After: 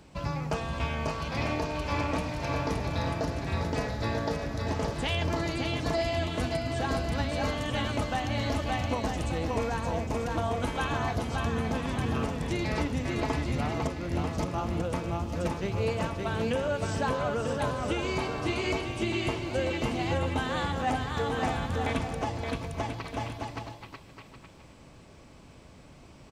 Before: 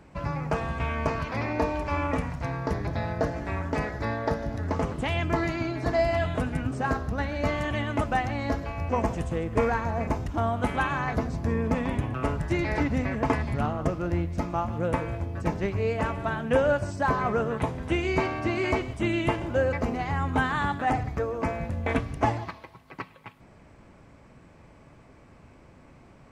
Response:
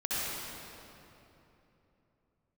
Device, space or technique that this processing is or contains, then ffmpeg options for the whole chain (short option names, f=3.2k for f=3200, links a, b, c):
over-bright horn tweeter: -af "highshelf=f=2.6k:t=q:w=1.5:g=7,aecho=1:1:570|940.5|1181|1338|1440:0.631|0.398|0.251|0.158|0.1,alimiter=limit=-17dB:level=0:latency=1:release=493,volume=-1.5dB"